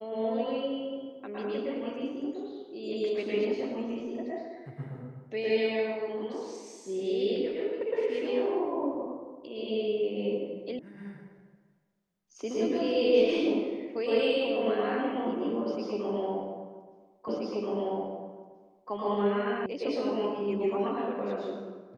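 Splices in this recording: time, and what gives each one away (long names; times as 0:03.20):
0:10.79: cut off before it has died away
0:17.28: the same again, the last 1.63 s
0:19.66: cut off before it has died away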